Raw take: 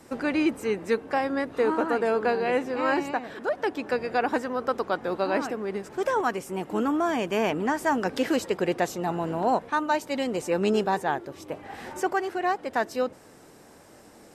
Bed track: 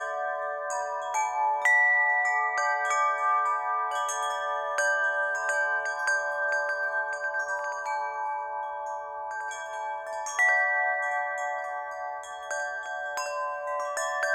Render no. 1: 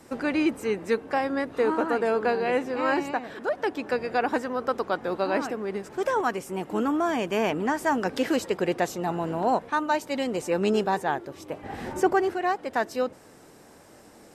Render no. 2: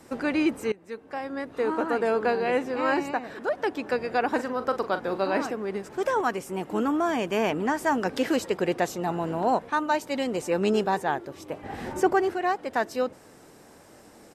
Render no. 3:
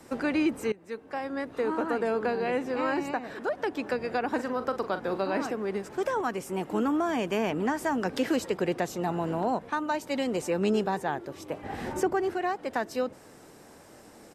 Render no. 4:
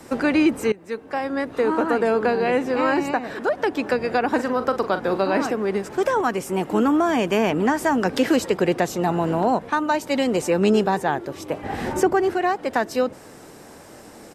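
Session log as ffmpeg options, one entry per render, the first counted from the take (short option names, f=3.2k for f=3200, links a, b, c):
-filter_complex "[0:a]asettb=1/sr,asplit=3[a][b][c];[a]atrim=end=11.634[d];[b]atrim=start=11.63:end=12.34,asetpts=PTS-STARTPTS,afade=t=in:d=0.004:c=qsin,afade=t=out:st=0.706:d=0.004:c=qsin,lowshelf=f=450:g=10.5[e];[c]atrim=start=12.336[f];[d][e]acrossfade=d=0.004:c1=hsin:c2=qsin[g];[g][f]acrossfade=d=0.004:c1=qsin:c2=hsin"
-filter_complex "[0:a]asettb=1/sr,asplit=3[a][b][c];[a]atrim=end=2.974[d];[b]atrim=start=2.97:end=3.39,asetpts=PTS-STARTPTS,afade=t=in:d=0.004:c=qsin,afade=t=out:st=0.416:d=0.004:c=qsin,bandreject=f=3.3k:w=7.6[e];[c]atrim=start=3.386[f];[d][e]acrossfade=d=0.004:c1=hsin:c2=qsin[g];[g][f]acrossfade=d=0.004:c1=qsin:c2=hsin,asplit=3[h][i][j];[h]afade=t=out:st=4.37:d=0.02[k];[i]asplit=2[l][m];[m]adelay=41,volume=-11dB[n];[l][n]amix=inputs=2:normalize=0,afade=t=in:st=4.37:d=0.02,afade=t=out:st=5.48:d=0.02[o];[j]afade=t=in:st=5.48:d=0.02[p];[k][o][p]amix=inputs=3:normalize=0,asplit=2[q][r];[q]atrim=end=0.72,asetpts=PTS-STARTPTS,afade=t=out:st=0.716:d=0.004:c=hsin:silence=0.0944061[s];[r]atrim=start=0.72,asetpts=PTS-STARTPTS,afade=t=in:d=1.32:silence=0.0944061[t];[s][t]concat=n=2:v=0:a=1"
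-filter_complex "[0:a]acrossover=split=280[a][b];[b]acompressor=threshold=-27dB:ratio=3[c];[a][c]amix=inputs=2:normalize=0"
-af "volume=8dB"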